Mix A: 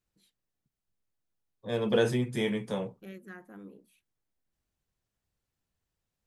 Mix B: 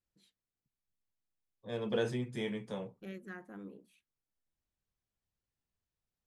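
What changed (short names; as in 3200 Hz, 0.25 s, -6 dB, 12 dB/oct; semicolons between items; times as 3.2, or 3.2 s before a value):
second voice -7.5 dB; master: add LPF 8600 Hz 12 dB/oct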